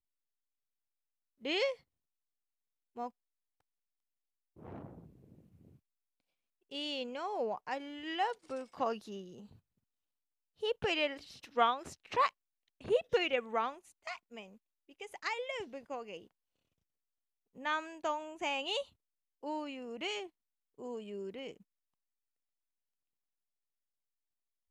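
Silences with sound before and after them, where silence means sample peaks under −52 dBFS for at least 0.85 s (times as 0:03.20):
0:01.75–0:02.96
0:03.10–0:04.57
0:05.67–0:06.71
0:09.56–0:10.62
0:16.27–0:17.56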